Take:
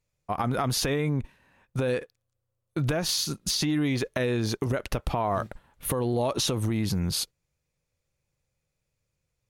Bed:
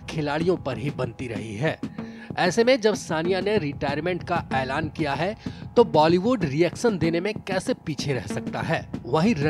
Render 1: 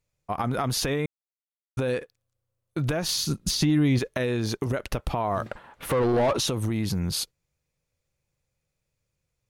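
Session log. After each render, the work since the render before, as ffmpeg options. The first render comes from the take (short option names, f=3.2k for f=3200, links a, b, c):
-filter_complex "[0:a]asettb=1/sr,asplit=3[a][b][c];[a]atrim=end=3.114[d];[b]atrim=start=3.11:end=3.99,asetpts=PTS-STARTPTS,afade=t=in:d=0.004:c=qsin,afade=t=out:st=0.876:d=0.004:c=qsin,lowshelf=f=260:g=9[e];[c]atrim=start=3.986[f];[d][e]acrossfade=d=0.004:c1=hsin:c2=qsin[g];[g][f]acrossfade=d=0.004:c1=qsin:c2=hsin,asettb=1/sr,asplit=3[h][i][j];[h]atrim=end=5.464[k];[i]atrim=start=5.46:end=6.37,asetpts=PTS-STARTPTS,afade=t=in:d=0.004:c=qsin,afade=t=out:st=0.906:d=0.004:c=qsin,asplit=2[l][m];[m]highpass=f=720:p=1,volume=24dB,asoftclip=type=tanh:threshold=-14.5dB[n];[l][n]amix=inputs=2:normalize=0,lowpass=f=1.4k:p=1,volume=-6dB[o];[j]atrim=start=6.366[p];[k][o]acrossfade=d=0.004:c1=hsin:c2=qsin[q];[q][p]acrossfade=d=0.004:c1=qsin:c2=hsin,asplit=3[r][s][t];[r]atrim=end=1.06,asetpts=PTS-STARTPTS,afade=t=out:st=1.056:d=0.004:c=hsin[u];[s]atrim=start=1.06:end=1.77,asetpts=PTS-STARTPTS,volume=0[v];[t]atrim=start=1.77,asetpts=PTS-STARTPTS,afade=t=in:d=0.004:c=hsin[w];[u][v][w]concat=n=3:v=0:a=1"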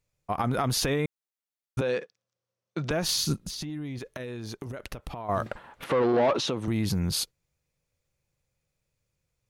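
-filter_complex "[0:a]asettb=1/sr,asplit=3[a][b][c];[a]atrim=end=1.814[d];[b]atrim=start=1.81:end=2.91,asetpts=PTS-STARTPTS,afade=t=in:d=0.004:c=qsin,afade=t=out:st=1.096:d=0.004:c=qsin,highpass=f=160:w=0.5412,highpass=f=160:w=1.3066,equalizer=f=190:t=q:w=4:g=4,equalizer=f=270:t=q:w=4:g=-9,equalizer=f=5.7k:t=q:w=4:g=5,lowpass=f=6.6k:w=0.5412,lowpass=f=6.6k:w=1.3066[e];[c]atrim=start=2.906[f];[d][e]acrossfade=d=0.004:c1=hsin:c2=qsin[g];[g][f]acrossfade=d=0.004:c1=qsin:c2=hsin,asettb=1/sr,asplit=3[h][i][j];[h]atrim=end=3.414[k];[i]atrim=start=3.41:end=5.29,asetpts=PTS-STARTPTS,afade=t=in:d=0.004:c=qsin,afade=t=out:st=1.876:d=0.004:c=qsin,acompressor=threshold=-34dB:ratio=5:attack=3.2:release=140:knee=1:detection=peak[l];[j]atrim=start=5.286[m];[k][l]acrossfade=d=0.004:c1=hsin:c2=qsin[n];[n][m]acrossfade=d=0.004:c1=qsin:c2=hsin,asettb=1/sr,asplit=3[o][p][q];[o]atrim=end=5.844[r];[p]atrim=start=5.84:end=6.68,asetpts=PTS-STARTPTS,afade=t=in:d=0.004:c=qsin,afade=t=out:st=0.836:d=0.004:c=qsin,highpass=180,lowpass=4.5k[s];[q]atrim=start=6.676[t];[r][s]acrossfade=d=0.004:c1=hsin:c2=qsin[u];[u][t]acrossfade=d=0.004:c1=qsin:c2=hsin"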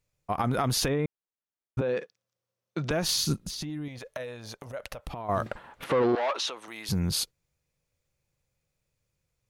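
-filter_complex "[0:a]asettb=1/sr,asplit=3[a][b][c];[a]atrim=end=0.884[d];[b]atrim=start=0.88:end=1.97,asetpts=PTS-STARTPTS,afade=t=in:d=0.004:c=qsin,afade=t=out:st=1.086:d=0.004:c=qsin,lowpass=f=1.3k:p=1[e];[c]atrim=start=1.966[f];[d][e]acrossfade=d=0.004:c1=hsin:c2=qsin[g];[g][f]acrossfade=d=0.004:c1=qsin:c2=hsin,asettb=1/sr,asplit=3[h][i][j];[h]atrim=end=3.884[k];[i]atrim=start=3.88:end=5.07,asetpts=PTS-STARTPTS,afade=t=in:d=0.004:c=qsin,afade=t=out:st=1.186:d=0.004:c=qsin,lowshelf=f=450:t=q:w=3:g=-6[l];[j]atrim=start=5.066[m];[k][l]acrossfade=d=0.004:c1=hsin:c2=qsin[n];[n][m]acrossfade=d=0.004:c1=qsin:c2=hsin,asettb=1/sr,asplit=3[o][p][q];[o]atrim=end=6.154[r];[p]atrim=start=6.15:end=6.89,asetpts=PTS-STARTPTS,afade=t=in:d=0.004:c=qsin,afade=t=out:st=0.736:d=0.004:c=qsin,highpass=830[s];[q]atrim=start=6.886[t];[r][s]acrossfade=d=0.004:c1=hsin:c2=qsin[u];[u][t]acrossfade=d=0.004:c1=qsin:c2=hsin"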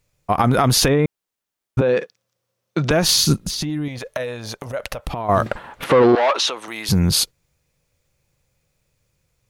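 -af "volume=11dB,alimiter=limit=-3dB:level=0:latency=1"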